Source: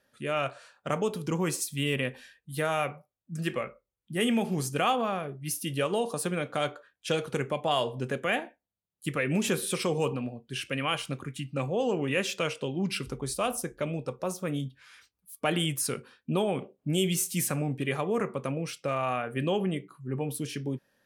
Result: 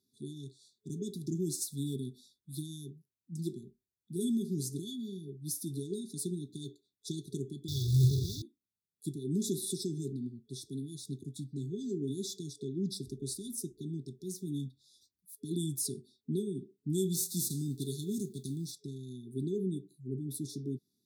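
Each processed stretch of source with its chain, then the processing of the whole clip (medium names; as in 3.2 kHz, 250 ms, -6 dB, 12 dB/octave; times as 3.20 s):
7.68–8.42 s: one-bit delta coder 32 kbps, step -26 dBFS + resonant low shelf 160 Hz +13.5 dB, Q 3 + short-mantissa float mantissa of 2-bit
17.13–18.71 s: formants flattened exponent 0.6 + peaking EQ 4.3 kHz +3 dB 0.22 oct
whole clip: FFT band-reject 430–3400 Hz; high-pass 91 Hz; trim -4 dB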